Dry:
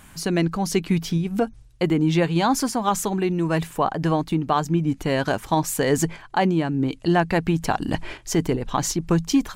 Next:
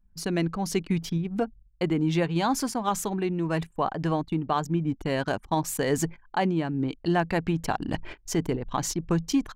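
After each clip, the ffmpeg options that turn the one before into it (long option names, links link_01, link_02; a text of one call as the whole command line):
ffmpeg -i in.wav -af "anlmdn=3.98,volume=-5dB" out.wav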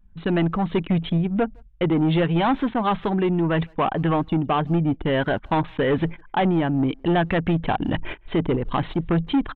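ffmpeg -i in.wav -filter_complex "[0:a]asoftclip=type=tanh:threshold=-24dB,aresample=8000,aresample=44100,asplit=2[link_01][link_02];[link_02]adelay=160,highpass=300,lowpass=3400,asoftclip=type=hard:threshold=-31dB,volume=-28dB[link_03];[link_01][link_03]amix=inputs=2:normalize=0,volume=9dB" out.wav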